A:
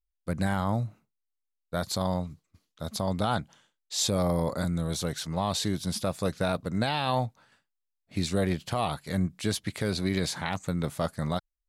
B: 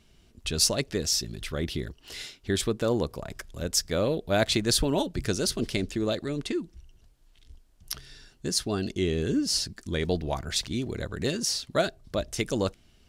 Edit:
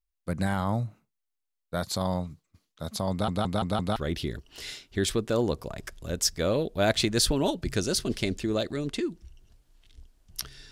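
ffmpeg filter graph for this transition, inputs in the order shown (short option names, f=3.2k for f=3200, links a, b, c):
-filter_complex "[0:a]apad=whole_dur=10.71,atrim=end=10.71,asplit=5[a][b][c][d][e];[a]atrim=end=3.282[f];[b]atrim=start=3.108:end=3.282[g];[c]atrim=start=3.108:end=3.282[h];[d]atrim=start=3.108:end=3.282[i];[e]atrim=start=3.108:end=3.282[j];[1:a]atrim=start=1.478:end=8.23[k];[f][g]acrossfade=d=0.004:c1=hsin:c2=hsin[l];[l][h]acrossfade=d=0.004:c1=hsin:c2=hsin[m];[m][i]acrossfade=d=0.004:c1=hsin:c2=hsin[n];[n][j]acrossfade=d=0.004:c1=hsin:c2=hsin[o];[o][k]acrossfade=d=0.004:c1=hsin:c2=hsin"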